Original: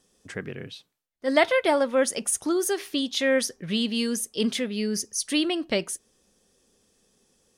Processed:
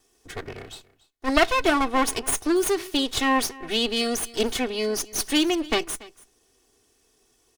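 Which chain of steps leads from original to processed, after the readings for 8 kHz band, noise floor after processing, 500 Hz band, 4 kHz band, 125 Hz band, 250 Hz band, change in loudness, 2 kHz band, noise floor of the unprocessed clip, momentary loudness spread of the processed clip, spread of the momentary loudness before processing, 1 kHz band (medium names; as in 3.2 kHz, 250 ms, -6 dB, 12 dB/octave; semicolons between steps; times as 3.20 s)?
+0.5 dB, -66 dBFS, -1.0 dB, +3.0 dB, -2.5 dB, +1.0 dB, +1.5 dB, +2.0 dB, -70 dBFS, 16 LU, 15 LU, +6.5 dB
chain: comb filter that takes the minimum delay 2.7 ms; delay 285 ms -21 dB; trim +3 dB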